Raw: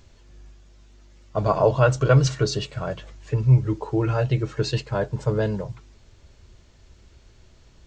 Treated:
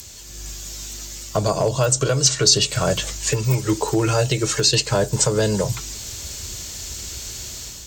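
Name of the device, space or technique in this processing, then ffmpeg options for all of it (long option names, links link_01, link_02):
FM broadcast chain: -filter_complex "[0:a]highpass=42,dynaudnorm=framelen=170:gausssize=5:maxgain=8dB,acrossover=split=300|630|5700[link_01][link_02][link_03][link_04];[link_01]acompressor=threshold=-24dB:ratio=4[link_05];[link_02]acompressor=threshold=-22dB:ratio=4[link_06];[link_03]acompressor=threshold=-32dB:ratio=4[link_07];[link_04]acompressor=threshold=-45dB:ratio=4[link_08];[link_05][link_06][link_07][link_08]amix=inputs=4:normalize=0,aemphasis=mode=production:type=75fm,alimiter=limit=-16.5dB:level=0:latency=1:release=499,asoftclip=type=hard:threshold=-18dB,lowpass=frequency=15000:width=0.5412,lowpass=frequency=15000:width=1.3066,aemphasis=mode=production:type=75fm,volume=8dB"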